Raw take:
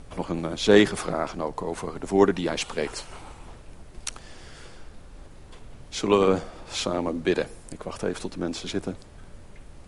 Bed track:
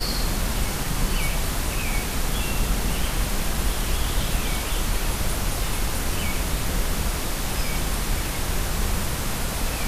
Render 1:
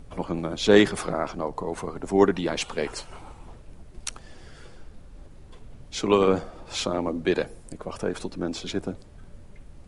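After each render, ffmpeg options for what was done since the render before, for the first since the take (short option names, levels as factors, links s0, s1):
-af "afftdn=nr=6:nf=-46"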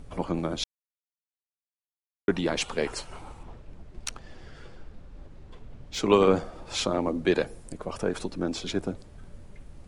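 -filter_complex "[0:a]asettb=1/sr,asplit=3[s0][s1][s2];[s0]atrim=end=3.434[s3];[s1]atrim=start=3.43:end=5.99,asetpts=PTS-STARTPTS,afade=t=in:d=0.004:c=qsin,afade=t=out:st=2.556:d=0.004:c=qsin,adynamicsmooth=sensitivity=6.5:basefreq=6100[s4];[s2]atrim=start=5.986[s5];[s3][s4]acrossfade=d=0.004:c1=hsin:c2=qsin[s6];[s6][s5]acrossfade=d=0.004:c1=qsin:c2=hsin,asplit=3[s7][s8][s9];[s7]atrim=end=0.64,asetpts=PTS-STARTPTS,afade=t=out:st=0.636:d=0.004:c=hsin[s10];[s8]atrim=start=0.64:end=2.28,asetpts=PTS-STARTPTS,volume=0[s11];[s9]atrim=start=2.28,asetpts=PTS-STARTPTS,afade=t=in:d=0.004:c=hsin[s12];[s10][s11][s12]concat=n=3:v=0:a=1"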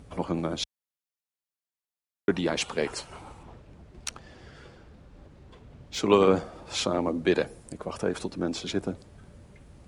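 -af "highpass=56"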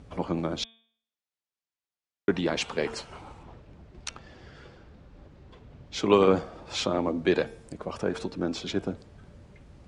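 -af "lowpass=6300,bandreject=f=226.2:t=h:w=4,bandreject=f=452.4:t=h:w=4,bandreject=f=678.6:t=h:w=4,bandreject=f=904.8:t=h:w=4,bandreject=f=1131:t=h:w=4,bandreject=f=1357.2:t=h:w=4,bandreject=f=1583.4:t=h:w=4,bandreject=f=1809.6:t=h:w=4,bandreject=f=2035.8:t=h:w=4,bandreject=f=2262:t=h:w=4,bandreject=f=2488.2:t=h:w=4,bandreject=f=2714.4:t=h:w=4,bandreject=f=2940.6:t=h:w=4,bandreject=f=3166.8:t=h:w=4,bandreject=f=3393:t=h:w=4,bandreject=f=3619.2:t=h:w=4"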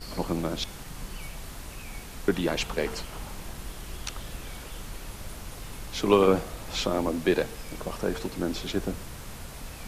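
-filter_complex "[1:a]volume=0.178[s0];[0:a][s0]amix=inputs=2:normalize=0"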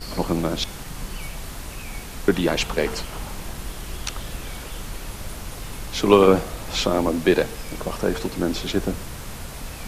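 -af "volume=2"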